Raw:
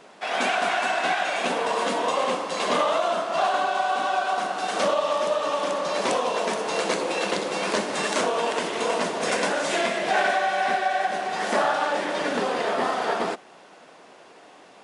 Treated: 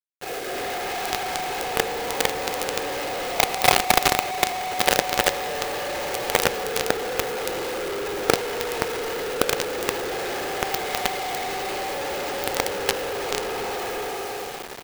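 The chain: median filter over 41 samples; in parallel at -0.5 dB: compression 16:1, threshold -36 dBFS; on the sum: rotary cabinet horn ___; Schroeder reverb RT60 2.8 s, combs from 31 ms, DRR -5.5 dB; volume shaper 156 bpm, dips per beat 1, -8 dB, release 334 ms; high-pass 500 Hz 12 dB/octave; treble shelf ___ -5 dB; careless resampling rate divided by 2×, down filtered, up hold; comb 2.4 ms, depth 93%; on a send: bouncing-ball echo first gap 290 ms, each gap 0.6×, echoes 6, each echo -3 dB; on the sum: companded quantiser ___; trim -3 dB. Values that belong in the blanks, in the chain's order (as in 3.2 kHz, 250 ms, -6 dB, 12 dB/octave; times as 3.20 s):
0.8 Hz, 9.5 kHz, 2-bit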